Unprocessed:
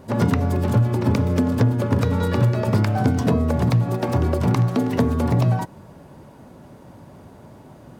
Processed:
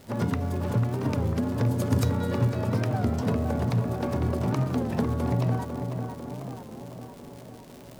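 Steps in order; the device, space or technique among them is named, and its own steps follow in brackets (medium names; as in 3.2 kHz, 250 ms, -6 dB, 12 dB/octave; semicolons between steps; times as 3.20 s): 1.66–2.10 s: tone controls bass +4 dB, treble +14 dB; tape echo 499 ms, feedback 73%, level -4.5 dB, low-pass 1.7 kHz; warped LP (warped record 33 1/3 rpm, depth 160 cents; crackle 150 per s -29 dBFS; pink noise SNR 31 dB); trim -8 dB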